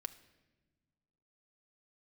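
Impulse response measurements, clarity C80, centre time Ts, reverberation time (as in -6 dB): 17.5 dB, 5 ms, no single decay rate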